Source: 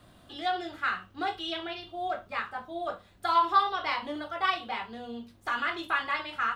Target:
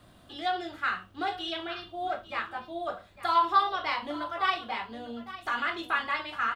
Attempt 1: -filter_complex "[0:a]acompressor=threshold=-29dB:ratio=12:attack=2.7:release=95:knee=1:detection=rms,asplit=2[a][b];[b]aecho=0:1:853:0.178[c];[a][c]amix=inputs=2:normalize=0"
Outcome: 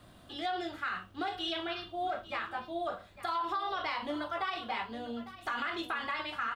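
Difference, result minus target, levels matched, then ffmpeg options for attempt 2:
compressor: peak gain reduction +14.5 dB
-filter_complex "[0:a]asplit=2[a][b];[b]aecho=0:1:853:0.178[c];[a][c]amix=inputs=2:normalize=0"

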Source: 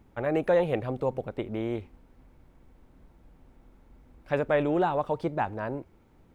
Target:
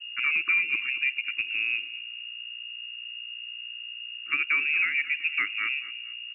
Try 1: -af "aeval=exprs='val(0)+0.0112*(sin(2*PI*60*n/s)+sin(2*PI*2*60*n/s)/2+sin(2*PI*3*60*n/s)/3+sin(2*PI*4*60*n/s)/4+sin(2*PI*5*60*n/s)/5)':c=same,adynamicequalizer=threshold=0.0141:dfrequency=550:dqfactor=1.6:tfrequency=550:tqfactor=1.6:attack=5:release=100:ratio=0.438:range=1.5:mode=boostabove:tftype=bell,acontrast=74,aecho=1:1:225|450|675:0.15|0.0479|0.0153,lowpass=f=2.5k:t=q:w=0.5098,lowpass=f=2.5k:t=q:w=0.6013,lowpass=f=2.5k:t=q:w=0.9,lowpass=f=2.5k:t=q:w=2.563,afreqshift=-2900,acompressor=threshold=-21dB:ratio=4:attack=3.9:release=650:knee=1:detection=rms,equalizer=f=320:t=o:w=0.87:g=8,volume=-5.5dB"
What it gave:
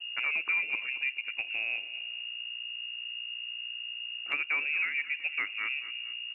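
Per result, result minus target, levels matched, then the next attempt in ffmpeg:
500 Hz band +9.0 dB; compressor: peak gain reduction +5 dB
-af "aeval=exprs='val(0)+0.0112*(sin(2*PI*60*n/s)+sin(2*PI*2*60*n/s)/2+sin(2*PI*3*60*n/s)/3+sin(2*PI*4*60*n/s)/4+sin(2*PI*5*60*n/s)/5)':c=same,adynamicequalizer=threshold=0.0141:dfrequency=550:dqfactor=1.6:tfrequency=550:tqfactor=1.6:attack=5:release=100:ratio=0.438:range=1.5:mode=boostabove:tftype=bell,acontrast=74,aecho=1:1:225|450|675:0.15|0.0479|0.0153,lowpass=f=2.5k:t=q:w=0.5098,lowpass=f=2.5k:t=q:w=0.6013,lowpass=f=2.5k:t=q:w=0.9,lowpass=f=2.5k:t=q:w=2.563,afreqshift=-2900,acompressor=threshold=-21dB:ratio=4:attack=3.9:release=650:knee=1:detection=rms,asuperstop=centerf=660:order=12:qfactor=0.91,equalizer=f=320:t=o:w=0.87:g=8,volume=-5.5dB"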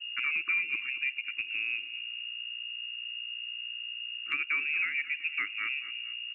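compressor: peak gain reduction +5 dB
-af "aeval=exprs='val(0)+0.0112*(sin(2*PI*60*n/s)+sin(2*PI*2*60*n/s)/2+sin(2*PI*3*60*n/s)/3+sin(2*PI*4*60*n/s)/4+sin(2*PI*5*60*n/s)/5)':c=same,adynamicequalizer=threshold=0.0141:dfrequency=550:dqfactor=1.6:tfrequency=550:tqfactor=1.6:attack=5:release=100:ratio=0.438:range=1.5:mode=boostabove:tftype=bell,acontrast=74,aecho=1:1:225|450|675:0.15|0.0479|0.0153,lowpass=f=2.5k:t=q:w=0.5098,lowpass=f=2.5k:t=q:w=0.6013,lowpass=f=2.5k:t=q:w=0.9,lowpass=f=2.5k:t=q:w=2.563,afreqshift=-2900,acompressor=threshold=-14dB:ratio=4:attack=3.9:release=650:knee=1:detection=rms,asuperstop=centerf=660:order=12:qfactor=0.91,equalizer=f=320:t=o:w=0.87:g=8,volume=-5.5dB"

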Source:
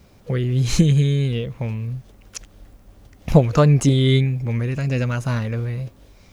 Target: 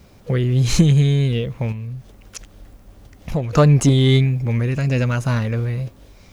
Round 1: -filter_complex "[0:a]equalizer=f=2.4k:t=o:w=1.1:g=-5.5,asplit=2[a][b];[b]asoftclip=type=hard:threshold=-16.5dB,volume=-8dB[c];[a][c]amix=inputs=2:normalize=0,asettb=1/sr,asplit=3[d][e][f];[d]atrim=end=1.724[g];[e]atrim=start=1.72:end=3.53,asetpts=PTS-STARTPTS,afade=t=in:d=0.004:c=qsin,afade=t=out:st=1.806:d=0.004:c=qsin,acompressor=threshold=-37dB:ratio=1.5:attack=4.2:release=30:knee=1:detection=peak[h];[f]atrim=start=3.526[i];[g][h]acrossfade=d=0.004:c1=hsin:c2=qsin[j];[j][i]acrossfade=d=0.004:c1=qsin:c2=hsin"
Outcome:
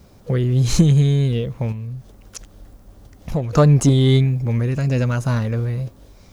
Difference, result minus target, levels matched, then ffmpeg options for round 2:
2000 Hz band -3.5 dB
-filter_complex "[0:a]asplit=2[a][b];[b]asoftclip=type=hard:threshold=-16.5dB,volume=-8dB[c];[a][c]amix=inputs=2:normalize=0,asettb=1/sr,asplit=3[d][e][f];[d]atrim=end=1.724[g];[e]atrim=start=1.72:end=3.53,asetpts=PTS-STARTPTS,afade=t=in:d=0.004:c=qsin,afade=t=out:st=1.806:d=0.004:c=qsin,acompressor=threshold=-37dB:ratio=1.5:attack=4.2:release=30:knee=1:detection=peak[h];[f]atrim=start=3.526[i];[g][h]acrossfade=d=0.004:c1=hsin:c2=qsin[j];[j][i]acrossfade=d=0.004:c1=qsin:c2=hsin"

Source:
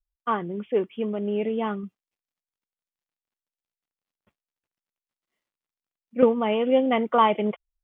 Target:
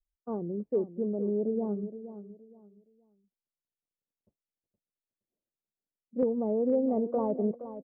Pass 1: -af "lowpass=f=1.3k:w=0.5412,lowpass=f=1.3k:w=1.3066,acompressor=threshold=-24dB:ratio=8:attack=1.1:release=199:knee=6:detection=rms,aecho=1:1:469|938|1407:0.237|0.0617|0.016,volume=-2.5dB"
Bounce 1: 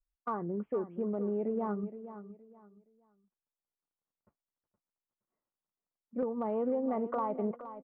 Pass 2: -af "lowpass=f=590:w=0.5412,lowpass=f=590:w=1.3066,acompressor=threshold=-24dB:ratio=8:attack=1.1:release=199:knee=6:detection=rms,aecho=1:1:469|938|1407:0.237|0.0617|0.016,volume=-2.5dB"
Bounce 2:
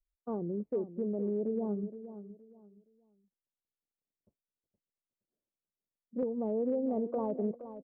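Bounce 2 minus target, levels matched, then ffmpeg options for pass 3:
compressor: peak gain reduction +6.5 dB
-af "lowpass=f=590:w=0.5412,lowpass=f=590:w=1.3066,acompressor=threshold=-16.5dB:ratio=8:attack=1.1:release=199:knee=6:detection=rms,aecho=1:1:469|938|1407:0.237|0.0617|0.016,volume=-2.5dB"

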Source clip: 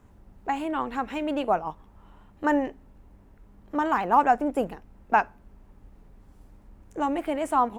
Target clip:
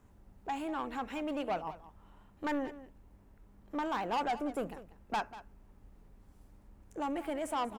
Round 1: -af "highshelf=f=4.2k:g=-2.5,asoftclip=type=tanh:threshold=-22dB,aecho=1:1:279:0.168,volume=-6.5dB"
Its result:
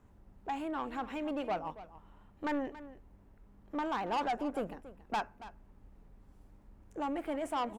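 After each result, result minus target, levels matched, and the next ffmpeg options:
echo 88 ms late; 8000 Hz band -4.0 dB
-af "highshelf=f=4.2k:g=-2.5,asoftclip=type=tanh:threshold=-22dB,aecho=1:1:191:0.168,volume=-6.5dB"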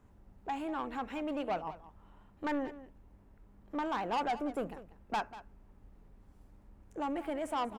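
8000 Hz band -4.0 dB
-af "highshelf=f=4.2k:g=4,asoftclip=type=tanh:threshold=-22dB,aecho=1:1:191:0.168,volume=-6.5dB"

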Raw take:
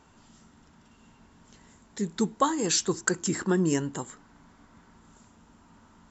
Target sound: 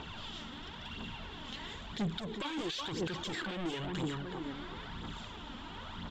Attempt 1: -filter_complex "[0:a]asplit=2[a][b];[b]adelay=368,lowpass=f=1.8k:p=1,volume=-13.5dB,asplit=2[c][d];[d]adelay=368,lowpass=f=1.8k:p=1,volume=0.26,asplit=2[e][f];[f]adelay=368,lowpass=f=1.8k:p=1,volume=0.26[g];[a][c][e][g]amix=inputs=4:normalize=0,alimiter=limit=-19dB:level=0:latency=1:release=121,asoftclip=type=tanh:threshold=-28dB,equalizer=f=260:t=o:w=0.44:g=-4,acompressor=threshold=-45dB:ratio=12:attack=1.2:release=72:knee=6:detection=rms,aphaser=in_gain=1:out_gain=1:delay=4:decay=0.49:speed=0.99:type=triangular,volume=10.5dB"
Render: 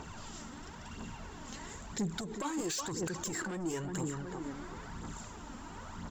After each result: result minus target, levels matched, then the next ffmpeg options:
4000 Hz band -6.5 dB; soft clip: distortion -6 dB
-filter_complex "[0:a]asplit=2[a][b];[b]adelay=368,lowpass=f=1.8k:p=1,volume=-13.5dB,asplit=2[c][d];[d]adelay=368,lowpass=f=1.8k:p=1,volume=0.26,asplit=2[e][f];[f]adelay=368,lowpass=f=1.8k:p=1,volume=0.26[g];[a][c][e][g]amix=inputs=4:normalize=0,alimiter=limit=-19dB:level=0:latency=1:release=121,asoftclip=type=tanh:threshold=-28dB,lowpass=f=3.4k:t=q:w=5,equalizer=f=260:t=o:w=0.44:g=-4,acompressor=threshold=-45dB:ratio=12:attack=1.2:release=72:knee=6:detection=rms,aphaser=in_gain=1:out_gain=1:delay=4:decay=0.49:speed=0.99:type=triangular,volume=10.5dB"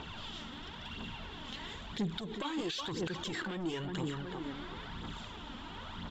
soft clip: distortion -6 dB
-filter_complex "[0:a]asplit=2[a][b];[b]adelay=368,lowpass=f=1.8k:p=1,volume=-13.5dB,asplit=2[c][d];[d]adelay=368,lowpass=f=1.8k:p=1,volume=0.26,asplit=2[e][f];[f]adelay=368,lowpass=f=1.8k:p=1,volume=0.26[g];[a][c][e][g]amix=inputs=4:normalize=0,alimiter=limit=-19dB:level=0:latency=1:release=121,asoftclip=type=tanh:threshold=-37dB,lowpass=f=3.4k:t=q:w=5,equalizer=f=260:t=o:w=0.44:g=-4,acompressor=threshold=-45dB:ratio=12:attack=1.2:release=72:knee=6:detection=rms,aphaser=in_gain=1:out_gain=1:delay=4:decay=0.49:speed=0.99:type=triangular,volume=10.5dB"

